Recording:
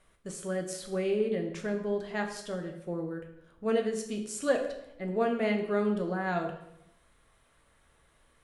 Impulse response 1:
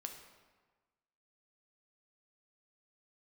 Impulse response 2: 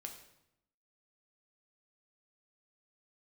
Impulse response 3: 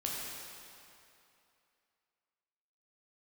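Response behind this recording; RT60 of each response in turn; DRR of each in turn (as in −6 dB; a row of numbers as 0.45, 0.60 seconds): 2; 1.4, 0.80, 2.7 seconds; 4.0, 3.0, −4.0 decibels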